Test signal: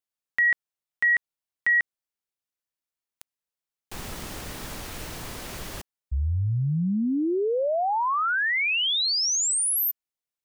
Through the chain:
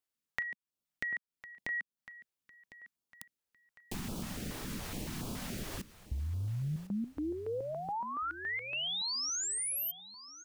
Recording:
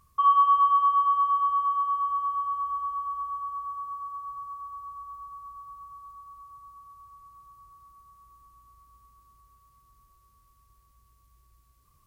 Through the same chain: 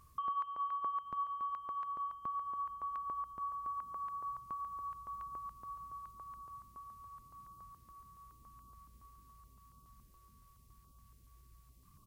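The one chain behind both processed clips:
parametric band 210 Hz +11 dB 1.3 octaves
downward compressor 5 to 1, threshold −36 dBFS
on a send: repeating echo 1,054 ms, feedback 33%, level −16 dB
on the sum: notch on a step sequencer 7.1 Hz 200–1,900 Hz

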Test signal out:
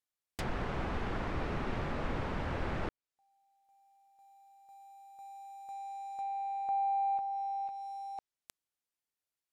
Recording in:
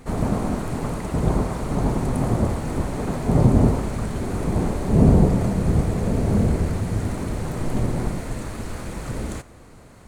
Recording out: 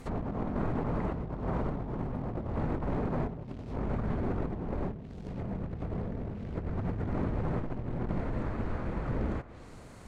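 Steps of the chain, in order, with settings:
compressor whose output falls as the input rises −27 dBFS, ratio −1
floating-point word with a short mantissa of 2 bits
treble cut that deepens with the level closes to 1,700 Hz, closed at −25 dBFS
level −7 dB

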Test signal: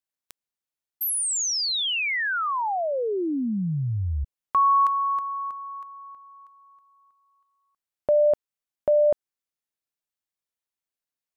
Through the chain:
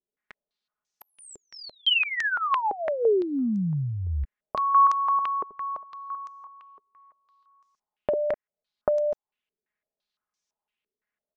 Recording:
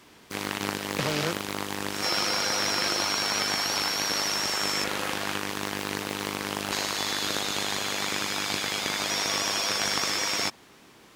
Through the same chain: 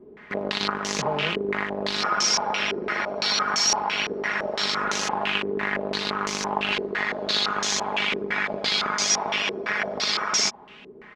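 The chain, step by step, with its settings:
comb filter 4.8 ms, depth 55%
downward compressor 12 to 1, threshold −26 dBFS
low-pass on a step sequencer 5.9 Hz 410–6,100 Hz
level +2.5 dB

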